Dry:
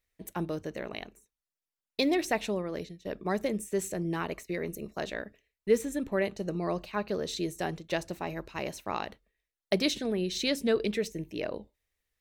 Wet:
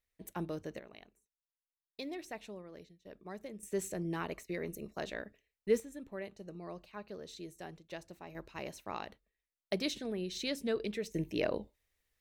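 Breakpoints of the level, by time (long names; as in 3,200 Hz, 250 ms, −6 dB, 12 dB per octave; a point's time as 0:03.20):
−5.5 dB
from 0:00.79 −15.5 dB
from 0:03.63 −5 dB
from 0:05.80 −14 dB
from 0:08.35 −7.5 dB
from 0:11.14 +1.5 dB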